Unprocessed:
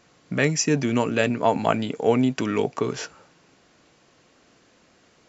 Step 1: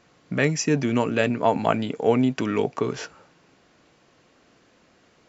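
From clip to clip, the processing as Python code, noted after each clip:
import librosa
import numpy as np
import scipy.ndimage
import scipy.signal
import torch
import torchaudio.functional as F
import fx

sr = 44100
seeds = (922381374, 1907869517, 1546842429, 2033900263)

y = fx.high_shelf(x, sr, hz=6500.0, db=-8.5)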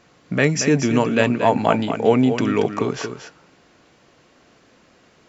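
y = x + 10.0 ** (-9.0 / 20.0) * np.pad(x, (int(230 * sr / 1000.0), 0))[:len(x)]
y = F.gain(torch.from_numpy(y), 4.0).numpy()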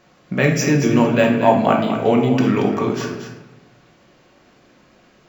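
y = fx.room_shoebox(x, sr, seeds[0], volume_m3=310.0, walls='mixed', distance_m=1.0)
y = np.interp(np.arange(len(y)), np.arange(len(y))[::2], y[::2])
y = F.gain(torch.from_numpy(y), -1.0).numpy()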